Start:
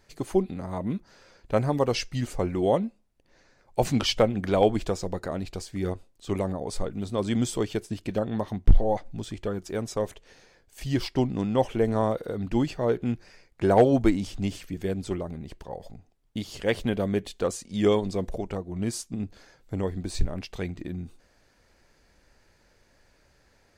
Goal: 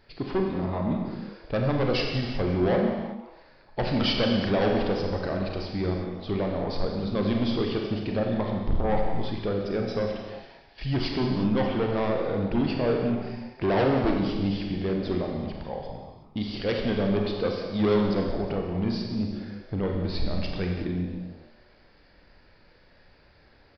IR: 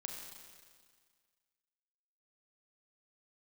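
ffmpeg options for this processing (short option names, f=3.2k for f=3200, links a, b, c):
-filter_complex "[0:a]aresample=11025,asoftclip=type=tanh:threshold=-24dB,aresample=44100,asplit=4[a][b][c][d];[b]adelay=178,afreqshift=140,volume=-17.5dB[e];[c]adelay=356,afreqshift=280,volume=-25.2dB[f];[d]adelay=534,afreqshift=420,volume=-33dB[g];[a][e][f][g]amix=inputs=4:normalize=0[h];[1:a]atrim=start_sample=2205,afade=t=out:st=0.44:d=0.01,atrim=end_sample=19845[i];[h][i]afir=irnorm=-1:irlink=0,volume=7dB"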